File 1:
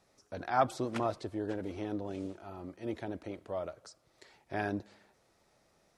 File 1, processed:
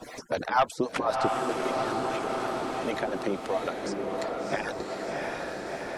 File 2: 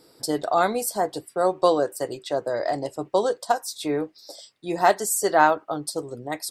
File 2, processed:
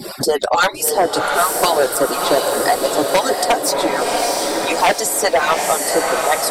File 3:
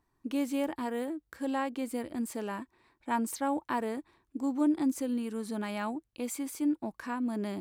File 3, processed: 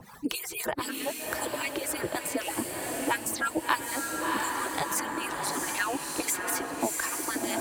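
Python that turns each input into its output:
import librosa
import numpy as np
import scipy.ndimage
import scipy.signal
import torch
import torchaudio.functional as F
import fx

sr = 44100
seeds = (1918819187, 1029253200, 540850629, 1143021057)

y = fx.hpss_only(x, sr, part='percussive')
y = fx.high_shelf(y, sr, hz=11000.0, db=3.5)
y = fx.harmonic_tremolo(y, sr, hz=3.9, depth_pct=70, crossover_hz=610.0)
y = fx.fold_sine(y, sr, drive_db=12, ceiling_db=-8.0)
y = fx.echo_diffused(y, sr, ms=693, feedback_pct=55, wet_db=-5.0)
y = fx.band_squash(y, sr, depth_pct=70)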